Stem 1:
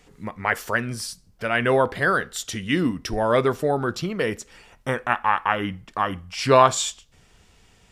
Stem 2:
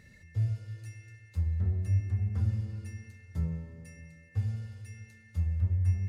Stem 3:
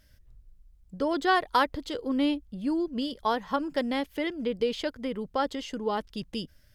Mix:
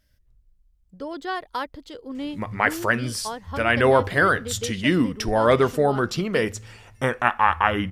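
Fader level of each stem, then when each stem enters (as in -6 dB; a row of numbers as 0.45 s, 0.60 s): +2.0 dB, -9.0 dB, -5.5 dB; 2.15 s, 2.10 s, 0.00 s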